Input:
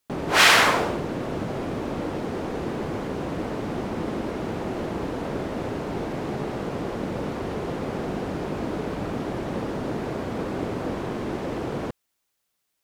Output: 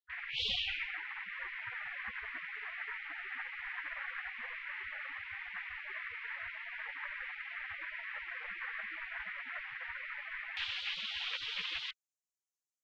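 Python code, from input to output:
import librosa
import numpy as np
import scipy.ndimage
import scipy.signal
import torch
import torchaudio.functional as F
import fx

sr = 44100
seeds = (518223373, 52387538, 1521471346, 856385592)

y = fx.lowpass(x, sr, hz=fx.steps((0.0, 1600.0), (10.57, 3300.0)), slope=24)
y = fx.spec_gate(y, sr, threshold_db=-30, keep='weak')
y = y * librosa.db_to_amplitude(16.5)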